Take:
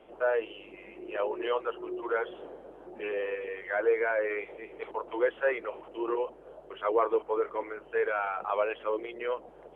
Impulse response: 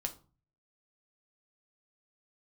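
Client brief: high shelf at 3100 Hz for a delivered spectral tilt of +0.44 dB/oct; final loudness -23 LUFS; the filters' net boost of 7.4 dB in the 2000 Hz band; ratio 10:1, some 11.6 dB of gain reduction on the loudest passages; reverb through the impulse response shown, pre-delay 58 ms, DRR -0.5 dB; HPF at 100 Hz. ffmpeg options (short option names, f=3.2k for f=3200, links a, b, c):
-filter_complex "[0:a]highpass=100,equalizer=f=2k:t=o:g=8,highshelf=f=3.1k:g=6,acompressor=threshold=-32dB:ratio=10,asplit=2[a][b];[1:a]atrim=start_sample=2205,adelay=58[c];[b][c]afir=irnorm=-1:irlink=0,volume=0.5dB[d];[a][d]amix=inputs=2:normalize=0,volume=10.5dB"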